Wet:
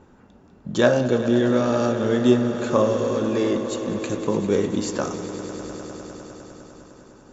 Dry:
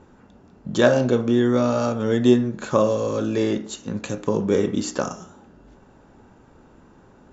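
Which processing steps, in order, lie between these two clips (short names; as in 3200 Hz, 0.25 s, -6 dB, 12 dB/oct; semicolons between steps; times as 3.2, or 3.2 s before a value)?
swelling echo 0.101 s, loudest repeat 5, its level -15 dB; gain -1 dB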